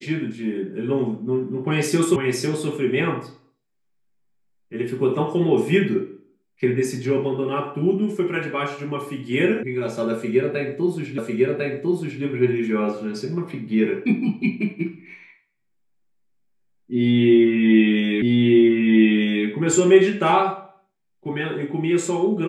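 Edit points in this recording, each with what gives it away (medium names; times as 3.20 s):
2.16 s: sound stops dead
9.63 s: sound stops dead
11.18 s: repeat of the last 1.05 s
18.22 s: repeat of the last 1.24 s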